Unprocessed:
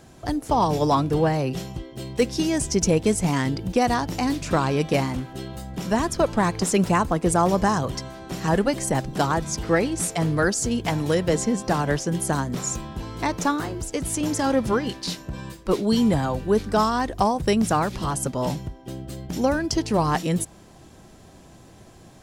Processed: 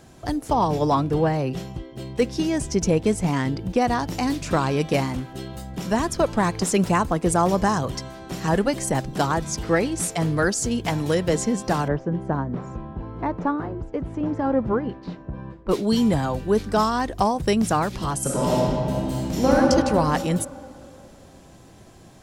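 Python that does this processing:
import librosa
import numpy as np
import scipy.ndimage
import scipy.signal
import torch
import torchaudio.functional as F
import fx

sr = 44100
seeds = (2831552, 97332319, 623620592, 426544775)

y = fx.high_shelf(x, sr, hz=4000.0, db=-7.0, at=(0.53, 4.0))
y = fx.lowpass(y, sr, hz=1200.0, slope=12, at=(11.88, 15.69))
y = fx.reverb_throw(y, sr, start_s=18.2, length_s=1.35, rt60_s=2.6, drr_db=-6.0)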